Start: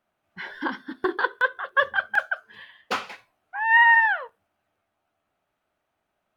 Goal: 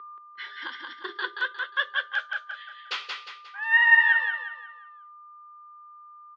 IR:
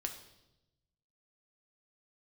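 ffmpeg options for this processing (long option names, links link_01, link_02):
-filter_complex "[0:a]agate=range=-33dB:threshold=-45dB:ratio=3:detection=peak,aderivative,asplit=2[link_01][link_02];[link_02]adelay=12,volume=-11.5dB[link_03];[link_01][link_03]amix=inputs=2:normalize=0,aeval=exprs='val(0)+0.00501*sin(2*PI*1200*n/s)':channel_layout=same,highpass=frequency=230:width=0.5412,highpass=frequency=230:width=1.3066,equalizer=frequency=270:width_type=q:width=4:gain=-3,equalizer=frequency=390:width_type=q:width=4:gain=8,equalizer=frequency=730:width_type=q:width=4:gain=-7,equalizer=frequency=1900:width_type=q:width=4:gain=4,equalizer=frequency=3400:width_type=q:width=4:gain=5,lowpass=frequency=4700:width=0.5412,lowpass=frequency=4700:width=1.3066,aecho=1:1:178|356|534|712|890:0.631|0.24|0.0911|0.0346|0.0132,volume=5.5dB"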